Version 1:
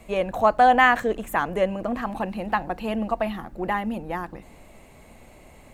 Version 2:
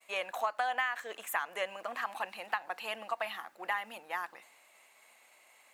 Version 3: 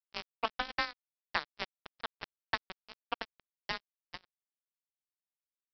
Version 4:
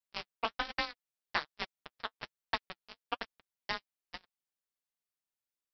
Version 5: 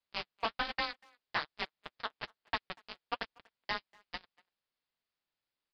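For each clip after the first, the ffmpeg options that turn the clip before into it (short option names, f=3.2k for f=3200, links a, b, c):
-af "highpass=1.2k,agate=range=-33dB:threshold=-52dB:ratio=3:detection=peak,acompressor=threshold=-28dB:ratio=16"
-af "afreqshift=24,aresample=11025,acrusher=bits=3:mix=0:aa=0.5,aresample=44100,volume=1dB"
-af "flanger=delay=4.1:depth=5.5:regen=-32:speed=1.2:shape=sinusoidal,volume=4dB"
-filter_complex "[0:a]asoftclip=type=tanh:threshold=-29dB,aresample=11025,aresample=44100,asplit=2[a][b];[b]adelay=240,highpass=300,lowpass=3.4k,asoftclip=type=hard:threshold=-36.5dB,volume=-24dB[c];[a][c]amix=inputs=2:normalize=0,volume=6dB"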